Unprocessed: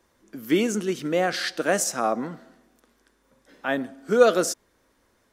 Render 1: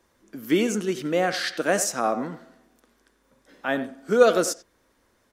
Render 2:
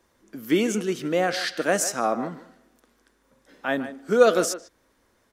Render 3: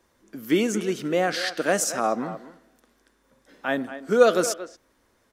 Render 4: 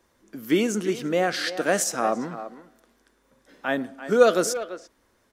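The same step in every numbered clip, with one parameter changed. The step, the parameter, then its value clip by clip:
speakerphone echo, time: 90 ms, 150 ms, 230 ms, 340 ms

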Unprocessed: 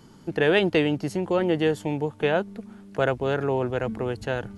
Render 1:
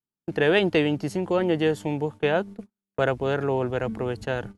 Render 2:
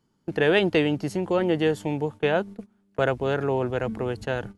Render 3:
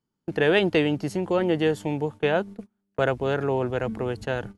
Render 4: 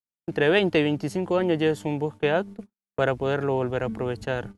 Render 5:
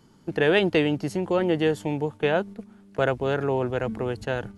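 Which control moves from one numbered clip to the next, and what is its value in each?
gate, range: -47 dB, -20 dB, -32 dB, -60 dB, -6 dB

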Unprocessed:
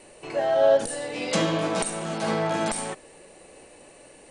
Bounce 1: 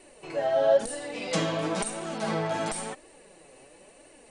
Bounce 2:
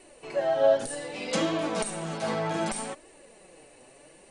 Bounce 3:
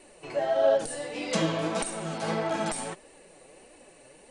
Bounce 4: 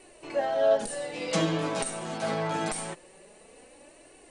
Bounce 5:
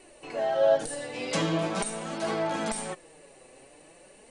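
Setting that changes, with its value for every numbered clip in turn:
flange, rate: 0.98 Hz, 0.65 Hz, 1.6 Hz, 0.24 Hz, 0.43 Hz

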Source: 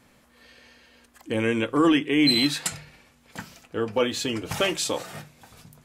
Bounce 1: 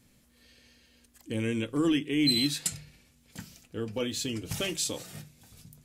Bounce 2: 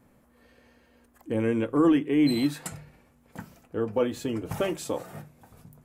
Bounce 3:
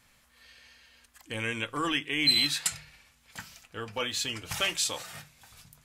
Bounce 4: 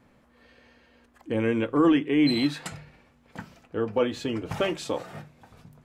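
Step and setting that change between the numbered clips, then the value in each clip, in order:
peaking EQ, frequency: 1 kHz, 4.1 kHz, 330 Hz, 13 kHz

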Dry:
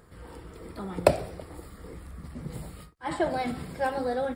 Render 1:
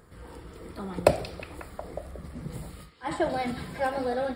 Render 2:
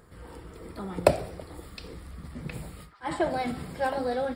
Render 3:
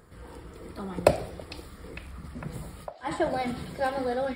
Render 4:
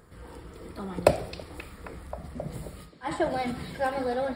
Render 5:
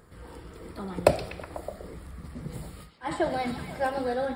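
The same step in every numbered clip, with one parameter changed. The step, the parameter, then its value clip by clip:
repeats whose band climbs or falls, time: 181 ms, 714 ms, 453 ms, 266 ms, 123 ms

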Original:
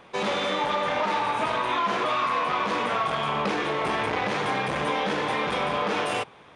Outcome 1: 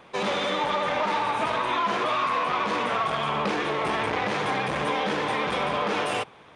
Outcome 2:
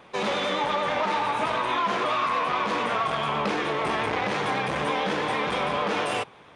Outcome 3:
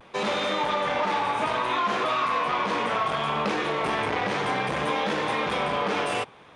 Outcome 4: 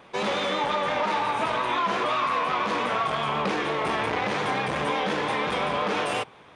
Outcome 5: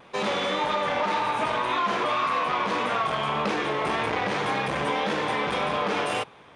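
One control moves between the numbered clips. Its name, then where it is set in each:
vibrato, rate: 15 Hz, 9 Hz, 0.63 Hz, 5.7 Hz, 1.8 Hz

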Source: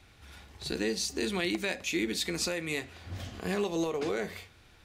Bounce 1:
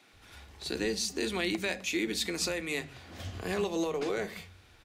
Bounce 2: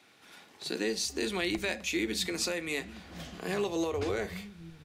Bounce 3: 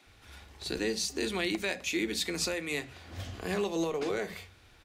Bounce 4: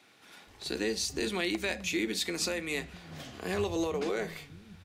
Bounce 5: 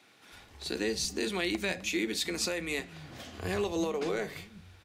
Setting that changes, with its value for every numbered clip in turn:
bands offset in time, time: 130 ms, 860 ms, 60 ms, 470 ms, 320 ms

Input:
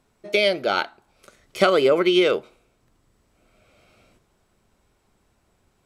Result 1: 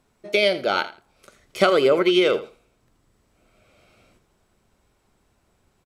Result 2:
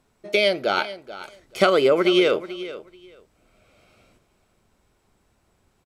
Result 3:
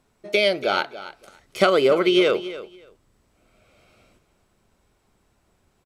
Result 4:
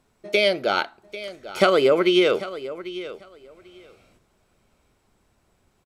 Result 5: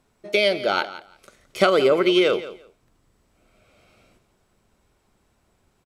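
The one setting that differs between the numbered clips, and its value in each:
feedback delay, time: 82 ms, 434 ms, 284 ms, 794 ms, 171 ms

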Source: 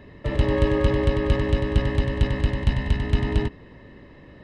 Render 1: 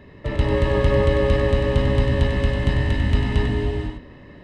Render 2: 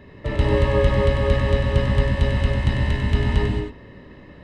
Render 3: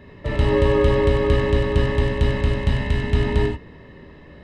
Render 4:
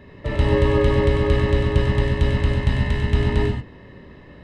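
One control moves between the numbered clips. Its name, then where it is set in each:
gated-style reverb, gate: 530 ms, 250 ms, 110 ms, 160 ms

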